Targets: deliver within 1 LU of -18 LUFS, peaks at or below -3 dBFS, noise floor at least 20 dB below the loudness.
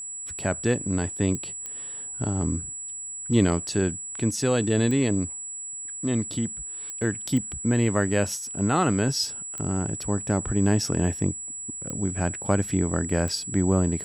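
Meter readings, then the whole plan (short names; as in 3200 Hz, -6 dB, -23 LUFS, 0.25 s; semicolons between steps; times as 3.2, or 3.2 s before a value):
clicks 8; steady tone 7800 Hz; tone level -33 dBFS; loudness -26.0 LUFS; peak -7.0 dBFS; loudness target -18.0 LUFS
-> de-click; notch 7800 Hz, Q 30; gain +8 dB; limiter -3 dBFS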